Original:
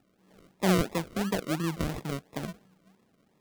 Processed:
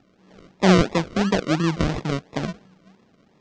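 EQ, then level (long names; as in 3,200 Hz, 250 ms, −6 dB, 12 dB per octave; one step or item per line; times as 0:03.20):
inverse Chebyshev low-pass filter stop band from 11,000 Hz, stop band 40 dB
+9.0 dB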